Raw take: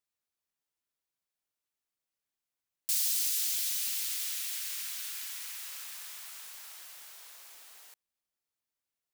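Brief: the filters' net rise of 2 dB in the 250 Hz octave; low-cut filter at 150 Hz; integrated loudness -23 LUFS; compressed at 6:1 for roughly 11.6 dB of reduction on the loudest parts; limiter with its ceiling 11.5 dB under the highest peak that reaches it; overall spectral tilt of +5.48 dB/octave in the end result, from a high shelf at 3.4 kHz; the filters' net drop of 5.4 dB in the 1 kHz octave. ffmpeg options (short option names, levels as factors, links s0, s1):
-af "highpass=150,equalizer=f=250:t=o:g=4,equalizer=f=1000:t=o:g=-9,highshelf=f=3400:g=8.5,acompressor=threshold=0.0282:ratio=6,volume=3.76,alimiter=limit=0.188:level=0:latency=1"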